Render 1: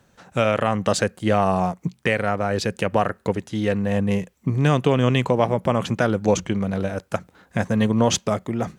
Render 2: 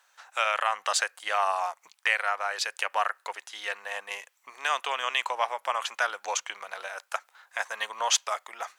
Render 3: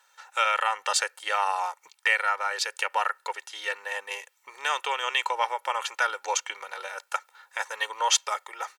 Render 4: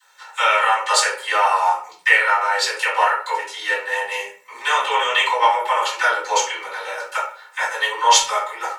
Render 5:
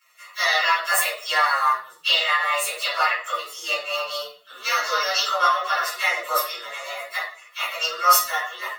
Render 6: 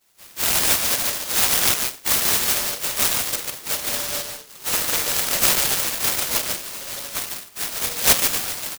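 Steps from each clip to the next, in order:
high-pass filter 870 Hz 24 dB per octave
comb filter 2.2 ms, depth 73%; hard clipping −9 dBFS, distortion −44 dB
all-pass dispersion lows, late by 70 ms, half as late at 420 Hz; convolution reverb RT60 0.45 s, pre-delay 3 ms, DRR −9 dB; level −5.5 dB
partials spread apart or drawn together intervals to 121%
on a send: single-tap delay 146 ms −4.5 dB; on the sum: downsampling to 11,025 Hz; short delay modulated by noise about 4,900 Hz, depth 0.41 ms

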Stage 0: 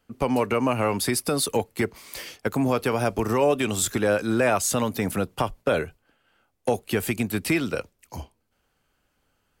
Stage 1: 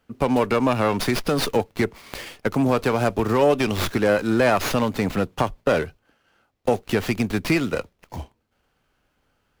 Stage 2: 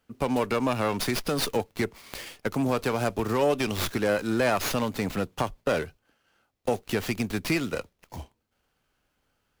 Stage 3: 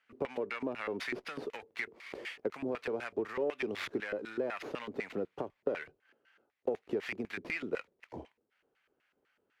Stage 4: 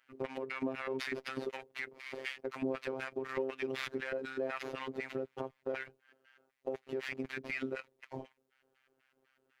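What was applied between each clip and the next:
windowed peak hold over 5 samples; level +3 dB
high-shelf EQ 3,800 Hz +6 dB; level −6 dB
downward compressor 6 to 1, threshold −32 dBFS, peak gain reduction 12.5 dB; auto-filter band-pass square 4 Hz 400–2,000 Hz; level +6.5 dB
brickwall limiter −29.5 dBFS, peak gain reduction 10 dB; phases set to zero 132 Hz; level +4 dB

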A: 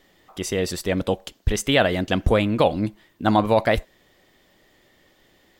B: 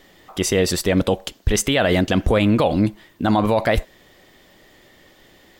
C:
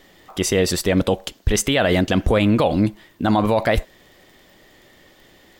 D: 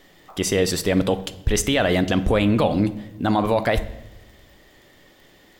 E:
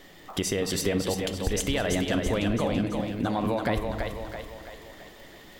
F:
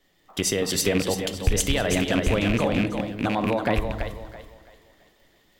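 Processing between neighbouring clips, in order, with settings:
boost into a limiter +14.5 dB; level −7 dB
surface crackle 19 per second −40 dBFS
rectangular room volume 430 cubic metres, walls mixed, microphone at 0.3 metres; level −2 dB
downward compressor 6 to 1, threshold −27 dBFS, peak gain reduction 12.5 dB; echo with a time of its own for lows and highs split 320 Hz, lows 227 ms, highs 333 ms, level −4.5 dB; level +2 dB
loose part that buzzes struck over −28 dBFS, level −20 dBFS; multiband upward and downward expander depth 70%; level +3 dB

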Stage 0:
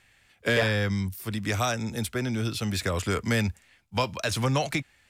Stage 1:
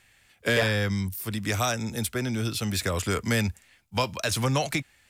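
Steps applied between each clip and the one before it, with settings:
high-shelf EQ 7,000 Hz +7 dB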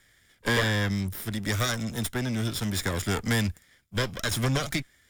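lower of the sound and its delayed copy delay 0.57 ms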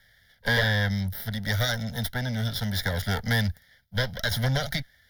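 phaser with its sweep stopped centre 1,700 Hz, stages 8
level +3.5 dB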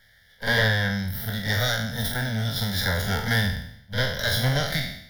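peak hold with a decay on every bin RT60 0.71 s
backwards echo 46 ms −9 dB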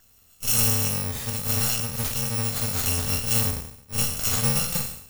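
samples in bit-reversed order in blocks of 128 samples

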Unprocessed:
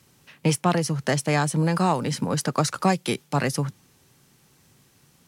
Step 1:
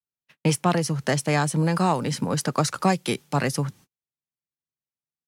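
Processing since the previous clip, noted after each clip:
noise gate −46 dBFS, range −45 dB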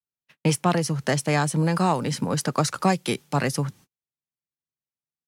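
no processing that can be heard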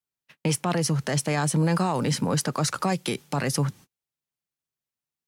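brickwall limiter −18.5 dBFS, peak gain reduction 9.5 dB
level +3 dB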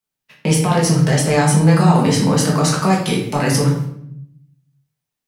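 rectangular room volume 160 cubic metres, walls mixed, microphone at 1.5 metres
level +3.5 dB

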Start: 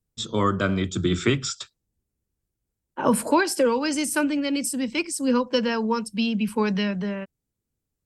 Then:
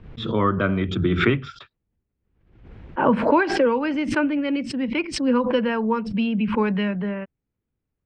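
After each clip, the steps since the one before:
low-pass filter 2,700 Hz 24 dB per octave
background raised ahead of every attack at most 70 dB per second
level +1.5 dB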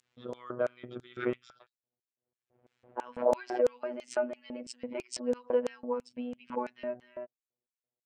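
phases set to zero 123 Hz
auto-filter band-pass square 3 Hz 610–7,300 Hz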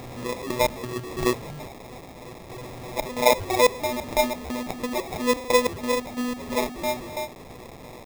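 converter with a step at zero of −39 dBFS
sample-rate reduction 1,500 Hz, jitter 0%
level +7.5 dB

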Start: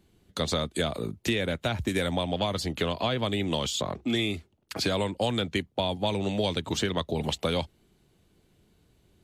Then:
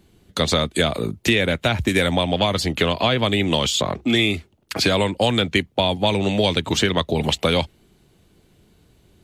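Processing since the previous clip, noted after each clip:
dynamic equaliser 2,300 Hz, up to +4 dB, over −45 dBFS, Q 1.4
level +8 dB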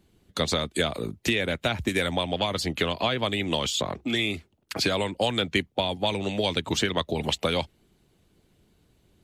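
harmonic and percussive parts rebalanced harmonic −5 dB
level −5 dB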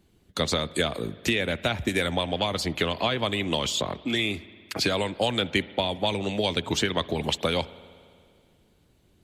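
spring reverb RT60 2.2 s, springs 57 ms, chirp 30 ms, DRR 18 dB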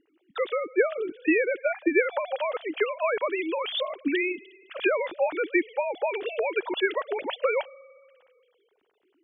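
three sine waves on the formant tracks

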